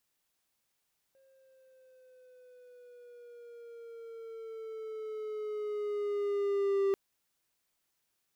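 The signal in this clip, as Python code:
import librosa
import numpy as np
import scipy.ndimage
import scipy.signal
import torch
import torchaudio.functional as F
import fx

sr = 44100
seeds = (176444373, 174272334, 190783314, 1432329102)

y = fx.riser_tone(sr, length_s=5.79, level_db=-23.0, wave='triangle', hz=538.0, rise_st=-5.5, swell_db=37.5)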